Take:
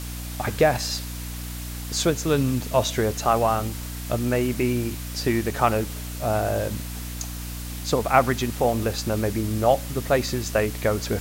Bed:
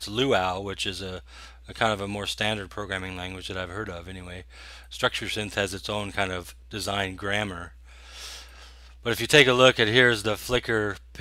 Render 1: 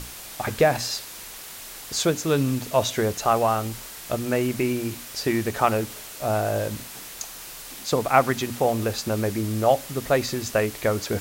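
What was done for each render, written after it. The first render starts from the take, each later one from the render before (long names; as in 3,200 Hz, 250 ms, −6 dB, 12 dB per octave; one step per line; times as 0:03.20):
mains-hum notches 60/120/180/240/300 Hz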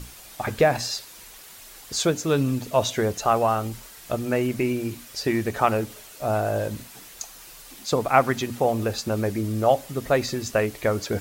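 broadband denoise 7 dB, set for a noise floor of −40 dBFS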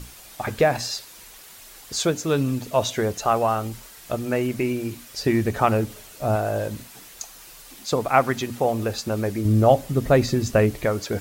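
0:05.18–0:06.36: low-shelf EQ 270 Hz +7 dB
0:09.45–0:10.85: low-shelf EQ 350 Hz +11 dB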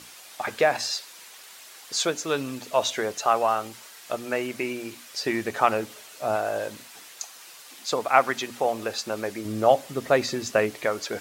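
meter weighting curve A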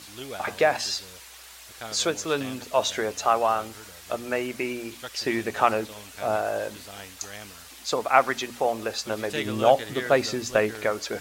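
mix in bed −15 dB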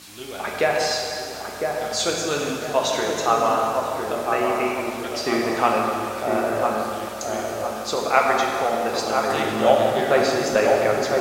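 delay with a low-pass on its return 1,005 ms, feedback 44%, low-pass 1,500 Hz, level −4 dB
dense smooth reverb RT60 2.6 s, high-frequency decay 0.8×, DRR −1 dB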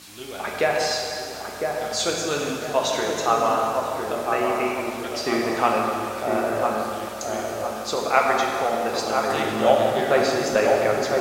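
level −1 dB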